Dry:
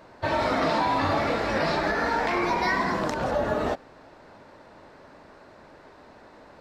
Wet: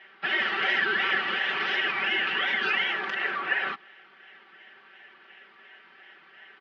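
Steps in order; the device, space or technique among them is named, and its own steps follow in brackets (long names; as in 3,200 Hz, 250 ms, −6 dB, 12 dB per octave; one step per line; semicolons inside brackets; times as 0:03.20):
voice changer toy (ring modulator whose carrier an LFO sweeps 910 Hz, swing 40%, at 2.8 Hz; loudspeaker in its box 420–4,000 Hz, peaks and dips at 580 Hz −10 dB, 1,000 Hz −8 dB, 1,800 Hz +7 dB, 3,000 Hz +9 dB)
comb filter 5.2 ms, depth 100%
level −3 dB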